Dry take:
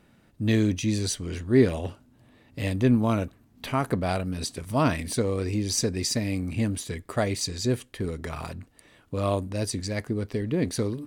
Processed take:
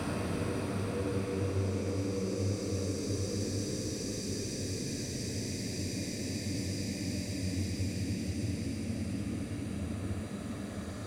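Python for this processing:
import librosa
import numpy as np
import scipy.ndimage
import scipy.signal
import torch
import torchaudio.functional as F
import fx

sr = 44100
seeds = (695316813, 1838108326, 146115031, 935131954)

y = fx.spec_steps(x, sr, hold_ms=400)
y = fx.paulstretch(y, sr, seeds[0], factor=5.9, window_s=1.0, from_s=5.09)
y = y * 10.0 ** (-5.0 / 20.0)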